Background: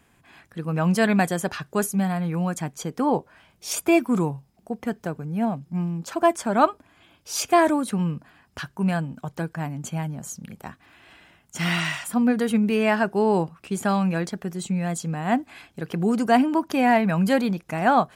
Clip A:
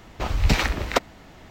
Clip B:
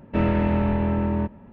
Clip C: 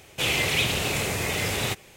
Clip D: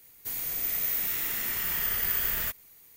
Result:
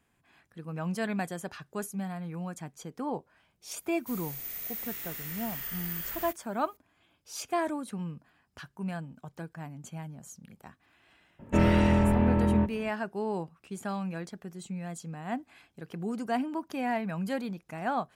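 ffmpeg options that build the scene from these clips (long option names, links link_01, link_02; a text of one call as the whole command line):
ffmpeg -i bed.wav -i cue0.wav -i cue1.wav -i cue2.wav -i cue3.wav -filter_complex "[0:a]volume=-12dB[link_01];[4:a]atrim=end=2.96,asetpts=PTS-STARTPTS,volume=-9dB,afade=type=in:duration=0.004:curve=hsin,afade=type=out:start_time=2.956:duration=0.004:curve=hsin,adelay=168021S[link_02];[2:a]atrim=end=1.52,asetpts=PTS-STARTPTS,volume=-1.5dB,afade=type=in:duration=0.004:curve=hsin,afade=type=out:start_time=1.516:duration=0.004:curve=hsin,adelay=11390[link_03];[link_01][link_02][link_03]amix=inputs=3:normalize=0" out.wav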